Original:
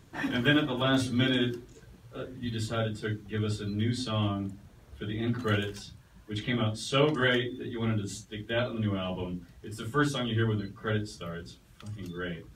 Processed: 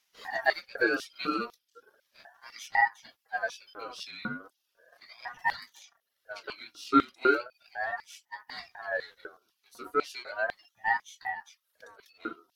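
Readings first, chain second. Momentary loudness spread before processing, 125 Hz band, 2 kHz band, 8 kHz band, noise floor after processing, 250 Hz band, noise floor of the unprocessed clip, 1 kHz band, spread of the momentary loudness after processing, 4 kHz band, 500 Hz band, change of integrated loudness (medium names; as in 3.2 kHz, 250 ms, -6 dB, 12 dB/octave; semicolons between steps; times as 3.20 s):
16 LU, -26.5 dB, +2.5 dB, -6.5 dB, -80 dBFS, -7.0 dB, -56 dBFS, +6.0 dB, 19 LU, -9.0 dB, -3.0 dB, -1.0 dB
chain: reverb removal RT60 0.67 s; FFT filter 120 Hz 0 dB, 180 Hz -16 dB, 290 Hz -20 dB, 590 Hz 0 dB, 890 Hz -26 dB, 2.4 kHz -22 dB, 4.8 kHz -7 dB, 7.3 kHz -25 dB, 11 kHz -8 dB; in parallel at -7.5 dB: crossover distortion -50 dBFS; on the sum: LFO high-pass square 2 Hz 450–2400 Hz; ring modulator with a swept carrier 1.1 kHz, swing 25%, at 0.36 Hz; trim +7.5 dB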